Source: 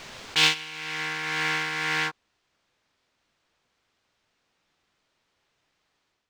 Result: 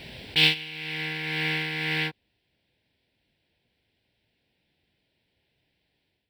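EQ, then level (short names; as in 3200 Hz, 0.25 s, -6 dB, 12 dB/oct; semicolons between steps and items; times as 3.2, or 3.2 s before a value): HPF 52 Hz; low shelf 200 Hz +9 dB; fixed phaser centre 2900 Hz, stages 4; +1.5 dB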